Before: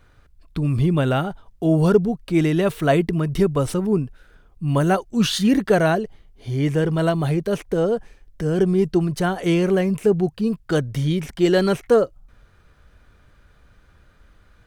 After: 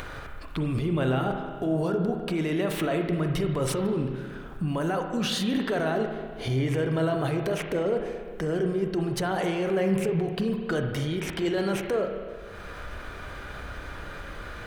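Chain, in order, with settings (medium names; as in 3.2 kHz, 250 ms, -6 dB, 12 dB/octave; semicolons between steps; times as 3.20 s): tone controls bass -8 dB, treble -4 dB; upward compressor, threshold -33 dBFS; peak limiter -27.5 dBFS, peak gain reduction 21.5 dB; on a send: reverberation RT60 1.8 s, pre-delay 31 ms, DRR 4 dB; on the sum: trim +6.5 dB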